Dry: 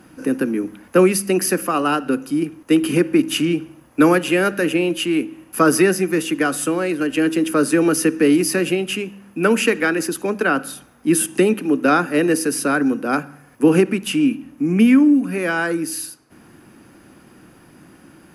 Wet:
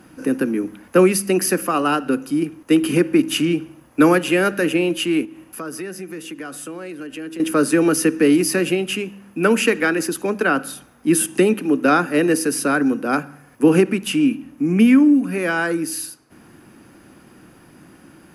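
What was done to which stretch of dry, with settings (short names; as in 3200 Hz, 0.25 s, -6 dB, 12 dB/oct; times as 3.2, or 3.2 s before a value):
5.25–7.4 compressor 2.5:1, threshold -35 dBFS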